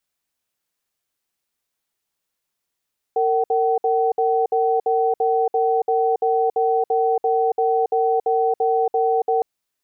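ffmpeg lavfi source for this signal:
-f lavfi -i "aevalsrc='0.119*(sin(2*PI*457*t)+sin(2*PI*759*t))*clip(min(mod(t,0.34),0.28-mod(t,0.34))/0.005,0,1)':d=6.26:s=44100"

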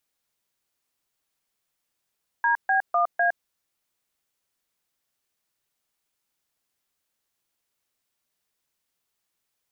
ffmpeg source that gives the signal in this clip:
-f lavfi -i "aevalsrc='0.0891*clip(min(mod(t,0.251),0.112-mod(t,0.251))/0.002,0,1)*(eq(floor(t/0.251),0)*(sin(2*PI*941*mod(t,0.251))+sin(2*PI*1633*mod(t,0.251)))+eq(floor(t/0.251),1)*(sin(2*PI*770*mod(t,0.251))+sin(2*PI*1633*mod(t,0.251)))+eq(floor(t/0.251),2)*(sin(2*PI*697*mod(t,0.251))+sin(2*PI*1209*mod(t,0.251)))+eq(floor(t/0.251),3)*(sin(2*PI*697*mod(t,0.251))+sin(2*PI*1633*mod(t,0.251))))':d=1.004:s=44100"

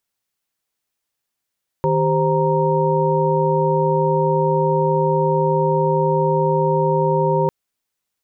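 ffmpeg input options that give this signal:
-f lavfi -i "aevalsrc='0.1*(sin(2*PI*155.56*t)+sin(2*PI*392*t)+sin(2*PI*523.25*t)+sin(2*PI*932.33*t))':d=5.65:s=44100"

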